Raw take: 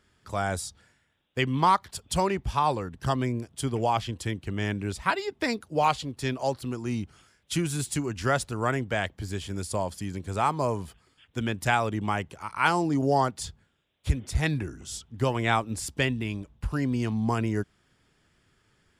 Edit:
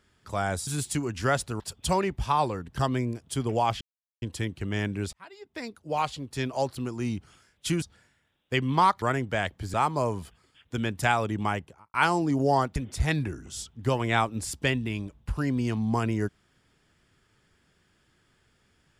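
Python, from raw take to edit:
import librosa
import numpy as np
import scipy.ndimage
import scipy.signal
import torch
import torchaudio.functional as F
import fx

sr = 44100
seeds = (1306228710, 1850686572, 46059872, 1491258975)

y = fx.studio_fade_out(x, sr, start_s=12.13, length_s=0.44)
y = fx.edit(y, sr, fx.swap(start_s=0.67, length_s=1.2, other_s=7.68, other_length_s=0.93),
    fx.insert_silence(at_s=4.08, length_s=0.41),
    fx.fade_in_span(start_s=4.99, length_s=1.44),
    fx.cut(start_s=9.33, length_s=1.04),
    fx.cut(start_s=13.39, length_s=0.72), tone=tone)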